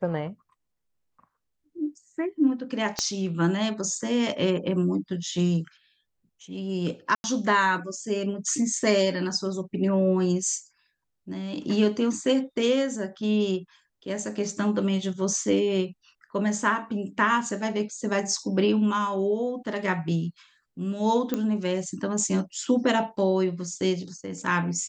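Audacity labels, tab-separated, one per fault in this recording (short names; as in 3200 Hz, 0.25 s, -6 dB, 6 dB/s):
2.990000	2.990000	pop -12 dBFS
7.150000	7.240000	gap 91 ms
21.340000	21.340000	pop -13 dBFS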